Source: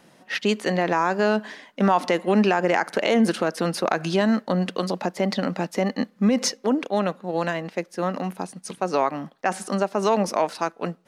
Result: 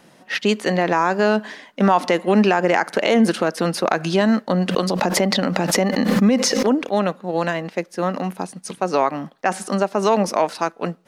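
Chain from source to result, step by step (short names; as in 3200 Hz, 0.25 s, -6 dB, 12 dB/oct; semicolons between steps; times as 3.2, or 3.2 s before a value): 4.69–6.92 backwards sustainer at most 26 dB/s; gain +3.5 dB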